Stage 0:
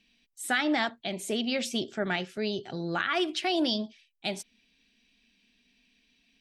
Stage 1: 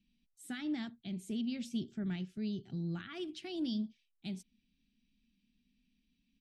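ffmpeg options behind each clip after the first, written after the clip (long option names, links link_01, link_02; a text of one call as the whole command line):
ffmpeg -i in.wav -af "firequalizer=gain_entry='entry(180,0);entry(540,-24);entry(3100,-16)':delay=0.05:min_phase=1" out.wav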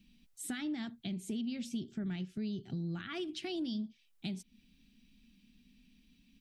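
ffmpeg -i in.wav -af "acompressor=threshold=-51dB:ratio=3,volume=11.5dB" out.wav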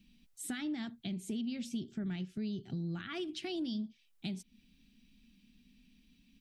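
ffmpeg -i in.wav -af anull out.wav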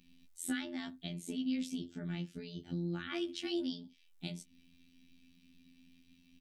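ffmpeg -i in.wav -filter_complex "[0:a]afftfilt=real='hypot(re,im)*cos(PI*b)':imag='0':win_size=2048:overlap=0.75,asplit=2[link_01][link_02];[link_02]adelay=15,volume=-7.5dB[link_03];[link_01][link_03]amix=inputs=2:normalize=0,volume=3.5dB" out.wav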